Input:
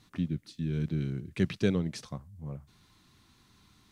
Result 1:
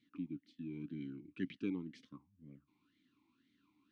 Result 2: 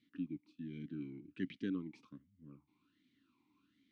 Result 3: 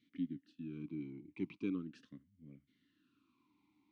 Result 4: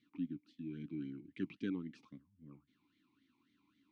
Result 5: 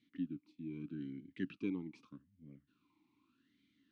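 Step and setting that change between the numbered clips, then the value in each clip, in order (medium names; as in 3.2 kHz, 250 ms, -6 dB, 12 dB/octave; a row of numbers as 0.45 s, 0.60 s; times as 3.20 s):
talking filter, rate: 2 Hz, 1.3 Hz, 0.4 Hz, 3.7 Hz, 0.82 Hz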